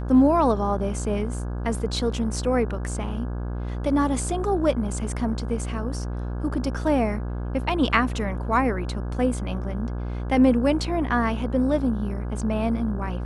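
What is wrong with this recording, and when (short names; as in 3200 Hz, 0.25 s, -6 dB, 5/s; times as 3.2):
buzz 60 Hz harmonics 28 -29 dBFS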